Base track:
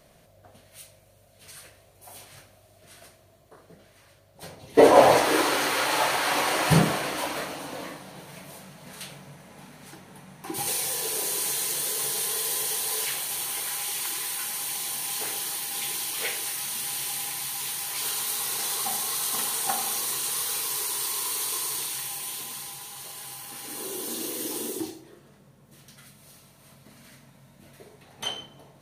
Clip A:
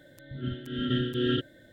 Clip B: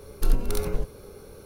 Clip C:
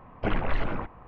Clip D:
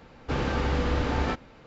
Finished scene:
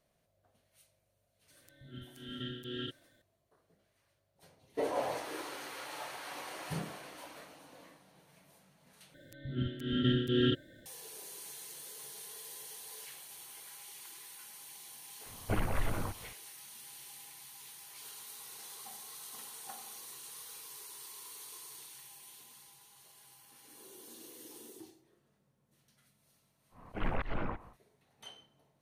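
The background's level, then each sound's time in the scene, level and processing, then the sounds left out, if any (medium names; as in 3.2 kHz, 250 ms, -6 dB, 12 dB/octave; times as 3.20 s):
base track -19.5 dB
1.50 s: add A -15 dB + treble shelf 2.6 kHz +11 dB
9.14 s: replace with A -1 dB + peaking EQ 950 Hz -13.5 dB 0.61 oct
15.26 s: add C -6.5 dB + peaking EQ 97 Hz +7.5 dB 0.68 oct
26.70 s: add C -5 dB, fades 0.10 s + slow attack 144 ms
not used: B, D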